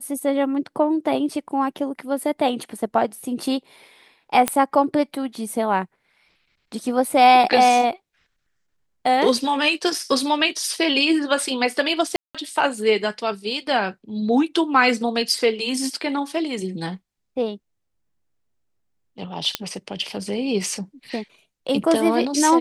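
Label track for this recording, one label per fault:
4.480000	4.480000	pop -4 dBFS
12.160000	12.350000	dropout 186 ms
19.550000	19.550000	pop -5 dBFS

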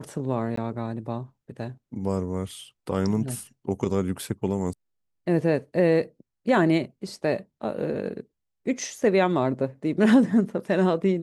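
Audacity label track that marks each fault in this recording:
0.560000	0.570000	dropout 14 ms

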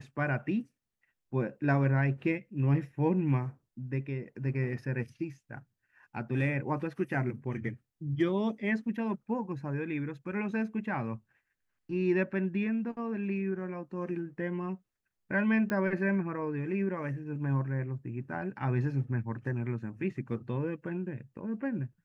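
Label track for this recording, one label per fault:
15.700000	15.700000	pop -21 dBFS

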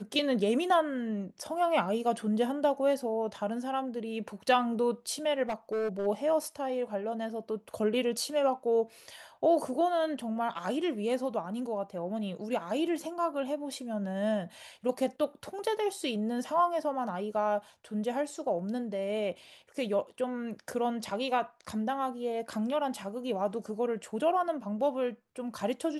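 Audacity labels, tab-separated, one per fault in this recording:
5.430000	6.070000	clipped -28 dBFS

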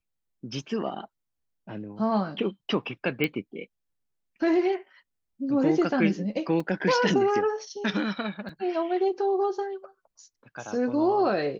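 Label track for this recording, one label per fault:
3.240000	3.240000	pop -13 dBFS
6.600000	6.600000	dropout 3.9 ms
8.490000	8.490000	dropout 4.2 ms

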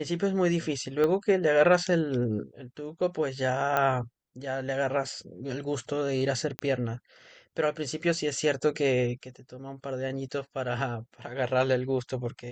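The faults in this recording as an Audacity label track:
1.040000	1.040000	pop -16 dBFS
3.770000	3.770000	pop -13 dBFS
6.590000	6.590000	pop -15 dBFS

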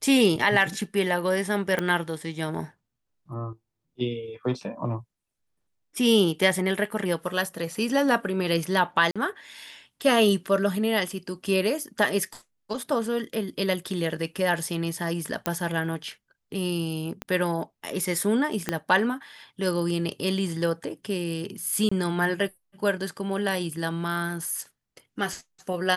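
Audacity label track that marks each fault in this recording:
1.790000	1.790000	pop -13 dBFS
9.110000	9.160000	dropout 46 ms
15.460000	15.460000	pop -8 dBFS
17.220000	17.220000	pop -17 dBFS
18.690000	18.690000	pop -10 dBFS
21.890000	21.910000	dropout 25 ms

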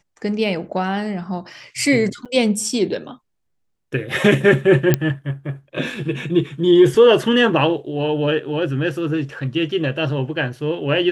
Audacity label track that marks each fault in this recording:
2.250000	2.260000	dropout 7.1 ms
4.940000	4.940000	pop -2 dBFS

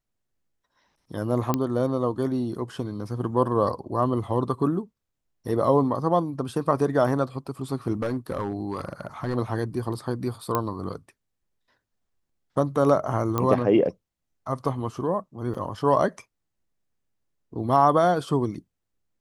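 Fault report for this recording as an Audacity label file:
1.540000	1.540000	pop -10 dBFS
7.930000	9.360000	clipped -21.5 dBFS
10.550000	10.550000	pop -10 dBFS
13.380000	13.380000	pop -11 dBFS
15.540000	15.550000	dropout 6.4 ms

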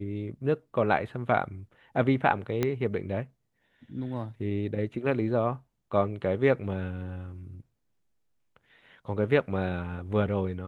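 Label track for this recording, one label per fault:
2.630000	2.630000	pop -13 dBFS

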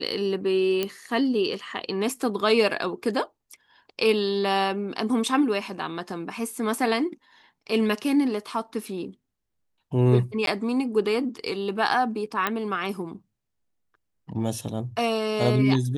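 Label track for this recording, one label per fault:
0.830000	0.830000	pop -11 dBFS
10.460000	10.470000	dropout
12.470000	12.470000	pop -10 dBFS

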